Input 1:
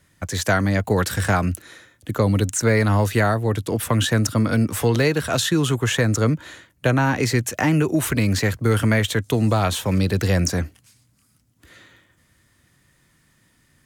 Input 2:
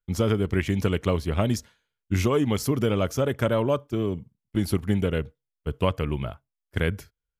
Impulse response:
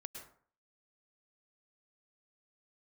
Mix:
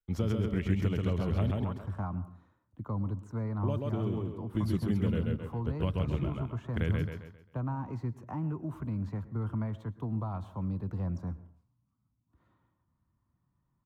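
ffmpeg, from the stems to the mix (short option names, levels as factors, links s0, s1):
-filter_complex "[0:a]firequalizer=gain_entry='entry(200,0);entry(460,-11);entry(1000,3);entry(1700,-18)':delay=0.05:min_phase=1,adelay=700,volume=0.168,asplit=2[s0][s1];[s1]volume=0.531[s2];[1:a]volume=0.562,asplit=3[s3][s4][s5];[s3]atrim=end=1.51,asetpts=PTS-STARTPTS,afade=t=out:st=1.506:d=0.004:c=hsin[s6];[s4]atrim=start=1.51:end=3.63,asetpts=PTS-STARTPTS,volume=0[s7];[s5]atrim=start=3.63,asetpts=PTS-STARTPTS,afade=t=in:d=0.004:c=hsin[s8];[s6][s7][s8]concat=n=3:v=0:a=1,asplit=2[s9][s10];[s10]volume=0.708[s11];[2:a]atrim=start_sample=2205[s12];[s2][s12]afir=irnorm=-1:irlink=0[s13];[s11]aecho=0:1:133|266|399|532|665:1|0.36|0.13|0.0467|0.0168[s14];[s0][s9][s13][s14]amix=inputs=4:normalize=0,equalizer=f=10000:w=0.37:g=-13.5,acrossover=split=250|3000[s15][s16][s17];[s16]acompressor=threshold=0.0158:ratio=6[s18];[s15][s18][s17]amix=inputs=3:normalize=0"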